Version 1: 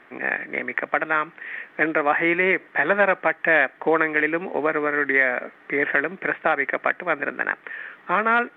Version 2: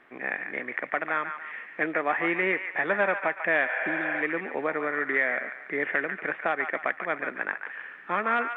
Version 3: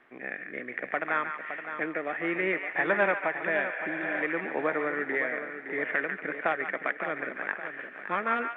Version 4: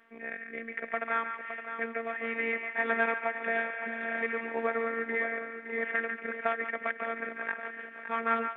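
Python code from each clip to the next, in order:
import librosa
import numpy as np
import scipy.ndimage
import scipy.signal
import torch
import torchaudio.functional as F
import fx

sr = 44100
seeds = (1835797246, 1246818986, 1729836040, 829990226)

y1 = fx.echo_wet_bandpass(x, sr, ms=143, feedback_pct=41, hz=1600.0, wet_db=-7.0)
y1 = fx.spec_repair(y1, sr, seeds[0], start_s=3.71, length_s=0.48, low_hz=420.0, high_hz=3400.0, source='before')
y1 = F.gain(torch.from_numpy(y1), -6.5).numpy()
y2 = fx.rotary_switch(y1, sr, hz=0.6, then_hz=6.3, switch_at_s=5.92)
y2 = fx.echo_feedback(y2, sr, ms=565, feedback_pct=41, wet_db=-9.5)
y3 = fx.robotise(y2, sr, hz=228.0)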